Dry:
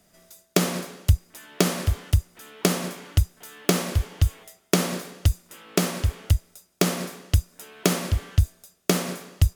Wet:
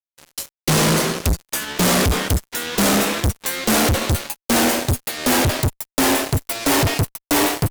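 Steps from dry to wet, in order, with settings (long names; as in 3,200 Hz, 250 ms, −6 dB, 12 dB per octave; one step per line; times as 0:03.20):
gliding playback speed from 79% → 169%
fuzz pedal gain 40 dB, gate −48 dBFS
level −1.5 dB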